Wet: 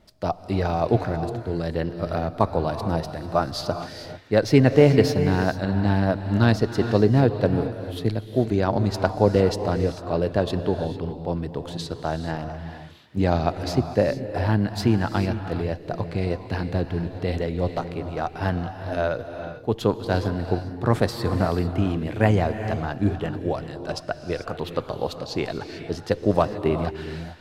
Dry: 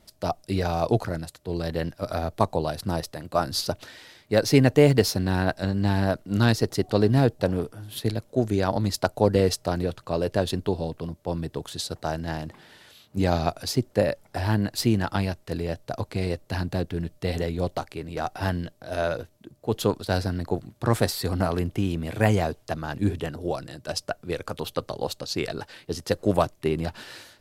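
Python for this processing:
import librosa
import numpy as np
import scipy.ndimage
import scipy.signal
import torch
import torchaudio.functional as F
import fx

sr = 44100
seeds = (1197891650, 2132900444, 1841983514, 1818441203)

y = fx.peak_eq(x, sr, hz=12000.0, db=-14.0, octaves=1.8)
y = fx.rev_gated(y, sr, seeds[0], gate_ms=470, shape='rising', drr_db=8.5)
y = y * librosa.db_to_amplitude(2.0)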